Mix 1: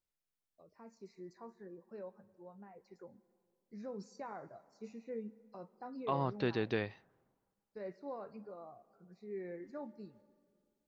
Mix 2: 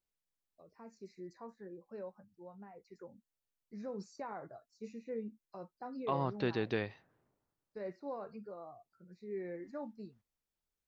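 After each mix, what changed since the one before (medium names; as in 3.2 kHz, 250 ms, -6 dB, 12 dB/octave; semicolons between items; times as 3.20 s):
first voice +3.5 dB; reverb: off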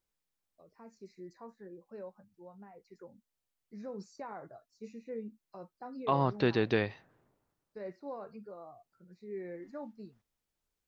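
second voice +6.0 dB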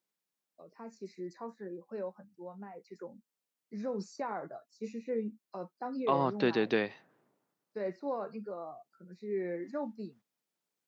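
first voice +6.5 dB; master: add high-pass 160 Hz 24 dB/octave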